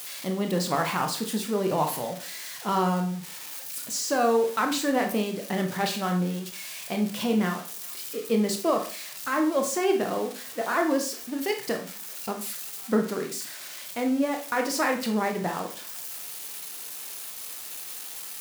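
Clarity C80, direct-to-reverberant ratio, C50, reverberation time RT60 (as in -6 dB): 14.0 dB, 3.5 dB, 8.5 dB, 0.40 s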